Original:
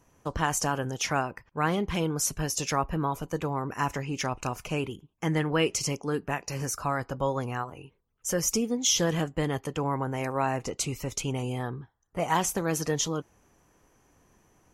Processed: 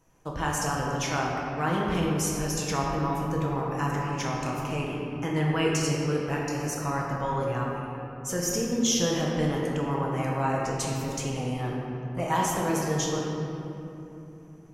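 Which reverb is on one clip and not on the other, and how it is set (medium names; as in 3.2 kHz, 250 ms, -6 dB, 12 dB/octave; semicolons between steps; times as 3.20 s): simulated room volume 150 m³, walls hard, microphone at 0.63 m; trim -4 dB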